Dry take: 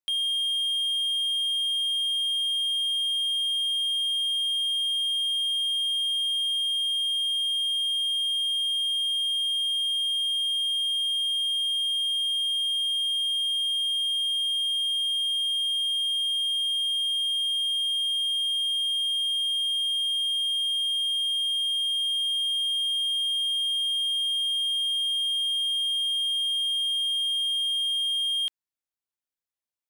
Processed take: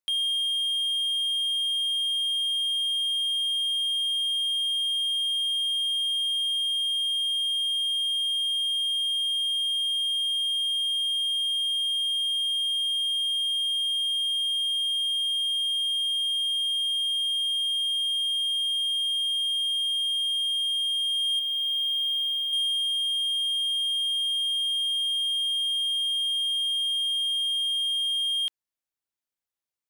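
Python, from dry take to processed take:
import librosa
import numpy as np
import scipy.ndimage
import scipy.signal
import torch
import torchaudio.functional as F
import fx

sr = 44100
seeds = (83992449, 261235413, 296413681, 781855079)

y = fx.peak_eq(x, sr, hz=7900.0, db=-12.5, octaves=1.7, at=(21.39, 22.53))
y = fx.rider(y, sr, range_db=10, speed_s=0.5)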